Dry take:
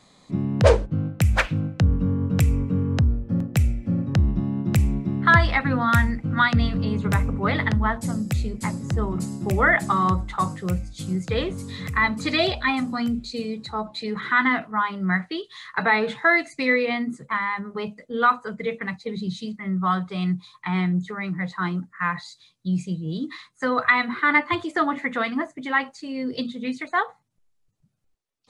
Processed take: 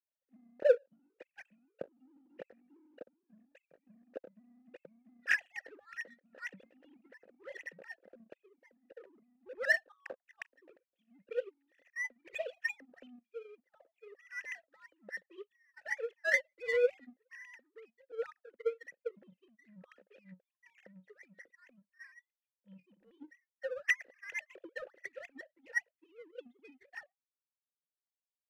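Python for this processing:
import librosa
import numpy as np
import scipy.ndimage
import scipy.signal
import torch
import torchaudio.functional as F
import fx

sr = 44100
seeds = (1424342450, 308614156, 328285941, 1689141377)

y = fx.sine_speech(x, sr)
y = fx.vowel_filter(y, sr, vowel='e')
y = fx.power_curve(y, sr, exponent=1.4)
y = F.gain(torch.from_numpy(y), -3.0).numpy()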